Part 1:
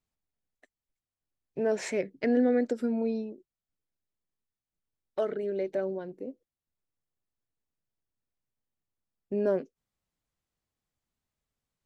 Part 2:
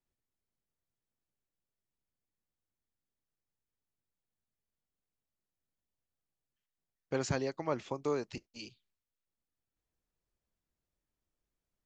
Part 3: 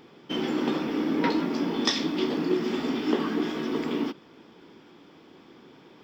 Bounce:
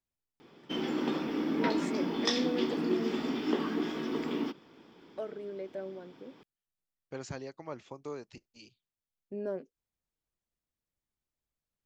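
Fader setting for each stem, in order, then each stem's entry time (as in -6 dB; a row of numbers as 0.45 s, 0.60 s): -9.0 dB, -7.5 dB, -5.0 dB; 0.00 s, 0.00 s, 0.40 s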